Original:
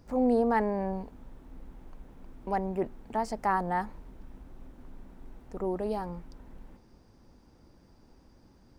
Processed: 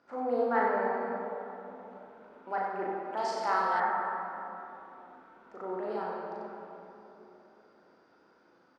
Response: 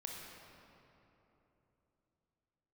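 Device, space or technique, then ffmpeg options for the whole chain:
station announcement: -filter_complex "[0:a]highpass=420,lowpass=3900,equalizer=frequency=1400:width_type=o:width=0.35:gain=11.5,aecho=1:1:37.9|93.29:0.708|0.562[link_01];[1:a]atrim=start_sample=2205[link_02];[link_01][link_02]afir=irnorm=-1:irlink=0,asettb=1/sr,asplit=3[link_03][link_04][link_05];[link_03]atrim=end=3.174[link_06];[link_04]atrim=start=3.17:end=3.8,asetpts=PTS-STARTPTS,afade=type=in:duration=0.004:curve=qsin,afade=type=out:start_time=0.626:duration=0.004:curve=qsin,highshelf=frequency=2600:width_type=q:width=1.5:gain=11[link_07];[link_05]atrim=start=3.796[link_08];[link_06][link_07]acrossfade=duration=0.004:curve1=hsin:curve2=qsin[link_09];[link_09][link_08]acrossfade=duration=0.004:curve1=qsin:curve2=hsin"

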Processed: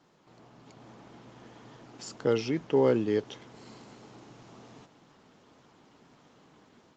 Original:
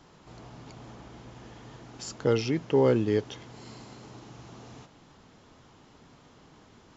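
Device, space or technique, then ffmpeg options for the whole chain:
video call: -af "highpass=150,dynaudnorm=framelen=530:gausssize=3:maxgain=5.5dB,volume=-6.5dB" -ar 48000 -c:a libopus -b:a 24k

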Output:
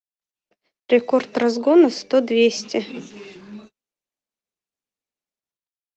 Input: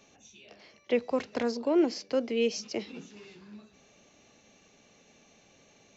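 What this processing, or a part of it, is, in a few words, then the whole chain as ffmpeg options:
video call: -af "highpass=160,dynaudnorm=framelen=110:gausssize=11:maxgain=10.5dB,agate=range=-49dB:threshold=-43dB:ratio=16:detection=peak,volume=1.5dB" -ar 48000 -c:a libopus -b:a 32k

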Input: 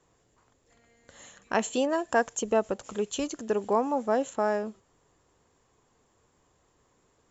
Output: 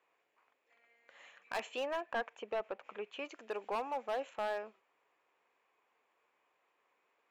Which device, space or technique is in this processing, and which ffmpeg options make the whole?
megaphone: -filter_complex "[0:a]highpass=620,lowpass=2700,equalizer=frequency=2400:width_type=o:width=0.41:gain=11,asoftclip=type=hard:threshold=-25dB,asettb=1/sr,asplit=3[link_01][link_02][link_03];[link_01]atrim=end=2.014[link_04];[link_02]atrim=start=2.01:end=3.25,asetpts=PTS-STARTPTS,afade=type=in:duration=0.004:curve=qsin,afade=type=out:start_time=1.236:duration=0.004:curve=qsin,bass=frequency=250:gain=2,treble=frequency=4000:gain=-14[link_05];[link_03]atrim=start=3.246[link_06];[link_04][link_05]acrossfade=duration=0.004:curve1=hsin:curve2=qsin[link_07];[link_07][link_06]acrossfade=duration=0.004:curve1=qsin:curve2=hsin,volume=-5.5dB"

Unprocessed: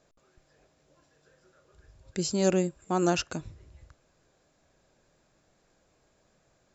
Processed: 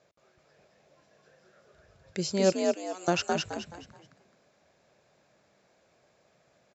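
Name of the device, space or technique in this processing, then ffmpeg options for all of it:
car door speaker: -filter_complex "[0:a]asettb=1/sr,asplit=3[link_01][link_02][link_03];[link_01]atrim=end=2.524[link_04];[link_02]atrim=start=2.52:end=3.08,asetpts=PTS-STARTPTS,afade=type=in:duration=0.004:curve=qsin,afade=type=out:start_time=0.556:duration=0.004:curve=qsin,aderivative[link_05];[link_03]atrim=start=3.076[link_06];[link_04][link_05]acrossfade=duration=0.004:curve1=hsin:curve2=qsin[link_07];[link_07][link_06]acrossfade=duration=0.004:curve1=qsin:curve2=hsin,highpass=100,equalizer=frequency=260:width_type=q:width=4:gain=-9,equalizer=frequency=580:width_type=q:width=4:gain=4,equalizer=frequency=2200:width_type=q:width=4:gain=4,lowpass=frequency=6500:width=0.5412,lowpass=frequency=6500:width=1.3066,asplit=5[link_08][link_09][link_10][link_11][link_12];[link_09]adelay=213,afreqshift=55,volume=-3dB[link_13];[link_10]adelay=426,afreqshift=110,volume=-12.9dB[link_14];[link_11]adelay=639,afreqshift=165,volume=-22.8dB[link_15];[link_12]adelay=852,afreqshift=220,volume=-32.7dB[link_16];[link_08][link_13][link_14][link_15][link_16]amix=inputs=5:normalize=0"

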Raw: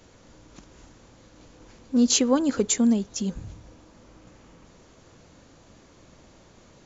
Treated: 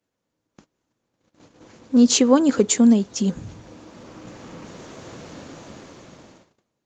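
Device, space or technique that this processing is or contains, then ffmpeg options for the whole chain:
video call: -af "highpass=120,dynaudnorm=framelen=280:gausssize=9:maxgain=16.5dB,agate=range=-24dB:threshold=-47dB:ratio=16:detection=peak" -ar 48000 -c:a libopus -b:a 32k

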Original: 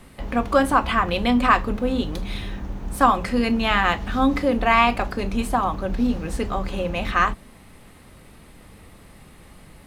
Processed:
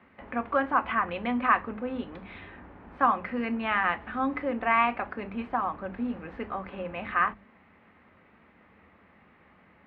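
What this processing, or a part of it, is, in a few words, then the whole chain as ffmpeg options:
bass cabinet: -af "highpass=frequency=62:width=0.5412,highpass=frequency=62:width=1.3066,equalizer=frequency=64:width_type=q:width=4:gain=-5,equalizer=frequency=130:width_type=q:width=4:gain=-9,equalizer=frequency=210:width_type=q:width=4:gain=5,lowpass=frequency=2200:width=0.5412,lowpass=frequency=2200:width=1.3066,tiltshelf=frequency=760:gain=-5,bandreject=frequency=50:width_type=h:width=6,bandreject=frequency=100:width_type=h:width=6,bandreject=frequency=150:width_type=h:width=6,bandreject=frequency=200:width_type=h:width=6,volume=-7.5dB"

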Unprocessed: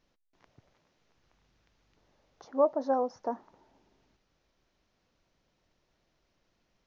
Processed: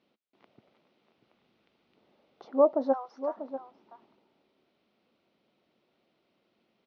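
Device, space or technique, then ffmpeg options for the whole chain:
kitchen radio: -filter_complex "[0:a]asplit=3[link_01][link_02][link_03];[link_01]afade=type=out:start_time=2.92:duration=0.02[link_04];[link_02]highpass=frequency=970:width=0.5412,highpass=frequency=970:width=1.3066,afade=type=in:start_time=2.92:duration=0.02,afade=type=out:start_time=3.36:duration=0.02[link_05];[link_03]afade=type=in:start_time=3.36:duration=0.02[link_06];[link_04][link_05][link_06]amix=inputs=3:normalize=0,highpass=210,equalizer=frequency=220:width_type=q:width=4:gain=6,equalizer=frequency=370:width_type=q:width=4:gain=3,equalizer=frequency=990:width_type=q:width=4:gain=-4,equalizer=frequency=1700:width_type=q:width=4:gain=-8,lowpass=frequency=4000:width=0.5412,lowpass=frequency=4000:width=1.3066,asplit=2[link_07][link_08];[link_08]adelay=641.4,volume=-11dB,highshelf=frequency=4000:gain=-14.4[link_09];[link_07][link_09]amix=inputs=2:normalize=0,volume=3.5dB"

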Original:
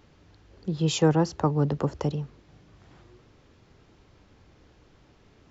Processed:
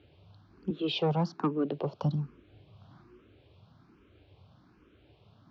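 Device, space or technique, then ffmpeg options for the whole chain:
barber-pole phaser into a guitar amplifier: -filter_complex "[0:a]asettb=1/sr,asplit=3[link_01][link_02][link_03];[link_01]atrim=end=0.704[link_04];[link_02]atrim=start=0.7:end=2.03,asetpts=PTS-STARTPTS,afade=type=in:duration=0.004:curve=qsin,afade=type=out:start_time=1.326:duration=0.004:curve=qsin,highpass=frequency=170:width=0.5412,highpass=frequency=170:width=1.3066[link_05];[link_03]atrim=start=2.026[link_06];[link_04][link_05]acrossfade=duration=0.004:curve1=hsin:curve2=qsin[link_07];[link_07][link_06]acrossfade=duration=0.004:curve1=qsin:curve2=hsin,asplit=2[link_08][link_09];[link_09]afreqshift=1.2[link_10];[link_08][link_10]amix=inputs=2:normalize=1,asoftclip=type=tanh:threshold=-19dB,highpass=78,equalizer=frequency=99:width_type=q:width=4:gain=4,equalizer=frequency=490:width_type=q:width=4:gain=-4,equalizer=frequency=860:width_type=q:width=4:gain=-4,equalizer=frequency=1900:width_type=q:width=4:gain=-10,lowpass=frequency=4000:width=0.5412,lowpass=frequency=4000:width=1.3066,volume=1.5dB"

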